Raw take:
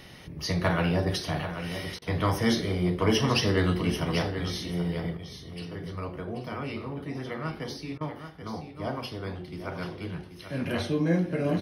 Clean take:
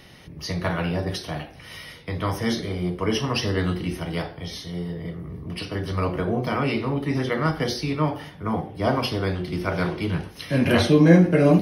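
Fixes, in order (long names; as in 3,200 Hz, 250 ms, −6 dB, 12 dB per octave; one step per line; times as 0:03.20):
clipped peaks rebuilt −14.5 dBFS
repair the gap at 0:01.99/0:07.98, 27 ms
echo removal 785 ms −9.5 dB
level 0 dB, from 0:05.17 +11 dB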